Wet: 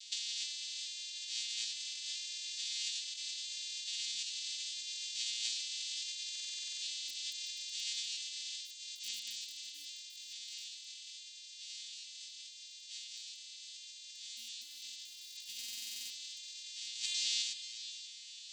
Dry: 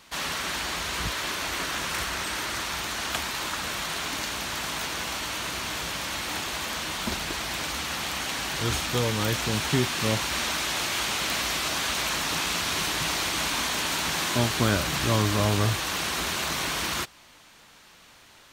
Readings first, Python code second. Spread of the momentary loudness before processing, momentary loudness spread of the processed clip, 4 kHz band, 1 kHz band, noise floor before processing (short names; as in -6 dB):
6 LU, 11 LU, -9.5 dB, under -40 dB, -53 dBFS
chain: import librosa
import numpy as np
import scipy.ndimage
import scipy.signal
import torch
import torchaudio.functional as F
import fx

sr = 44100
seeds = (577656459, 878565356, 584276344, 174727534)

p1 = fx.vocoder_arp(x, sr, chord='major triad', root=58, every_ms=430)
p2 = fx.schmitt(p1, sr, flips_db=-20.5)
p3 = p1 + (p2 * 10.0 ** (-5.0 / 20.0))
p4 = scipy.signal.sosfilt(scipy.signal.cheby2(4, 50, 1400.0, 'highpass', fs=sr, output='sos'), p3)
p5 = p4 + 10.0 ** (-14.5 / 20.0) * np.pad(p4, (int(374 * sr / 1000.0), 0))[:len(p4)]
p6 = np.clip(p5, -10.0 ** (-31.0 / 20.0), 10.0 ** (-31.0 / 20.0))
p7 = fx.echo_feedback(p6, sr, ms=477, feedback_pct=20, wet_db=-11)
p8 = fx.over_compress(p7, sr, threshold_db=-50.0, ratio=-0.5)
p9 = fx.buffer_glitch(p8, sr, at_s=(6.31, 15.59), block=2048, repeats=10)
y = p9 * 10.0 ** (9.0 / 20.0)